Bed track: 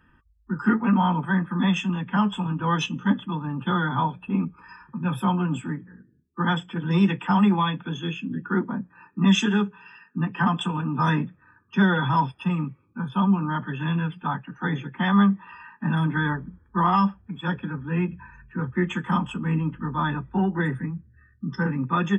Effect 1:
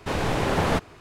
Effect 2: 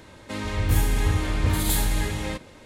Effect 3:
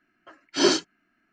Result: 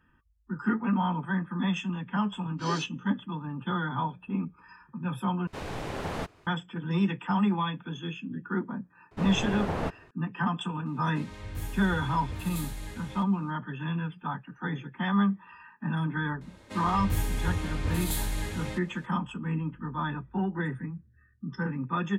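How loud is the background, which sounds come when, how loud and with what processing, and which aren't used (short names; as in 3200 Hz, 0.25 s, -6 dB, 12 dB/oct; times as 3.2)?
bed track -6.5 dB
2.05 add 3 -16.5 dB
5.47 replace with 1 -11 dB
9.11 add 1 -7 dB + high shelf 2100 Hz -9.5 dB
10.86 add 2 -15 dB
16.41 add 2 -7.5 dB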